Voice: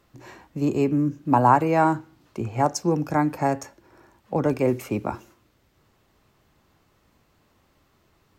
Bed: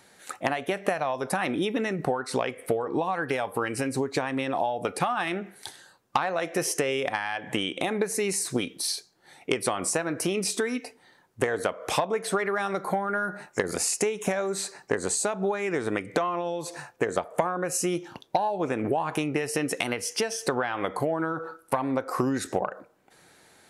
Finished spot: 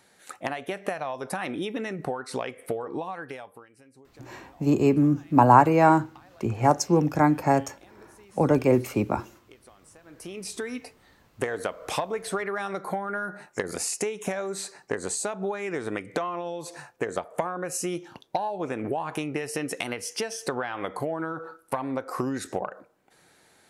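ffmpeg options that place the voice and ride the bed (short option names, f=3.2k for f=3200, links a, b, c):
-filter_complex "[0:a]adelay=4050,volume=1.5dB[a];[1:a]volume=20dB,afade=t=out:st=2.86:d=0.81:silence=0.0707946,afade=t=in:st=10.02:d=0.87:silence=0.0630957[b];[a][b]amix=inputs=2:normalize=0"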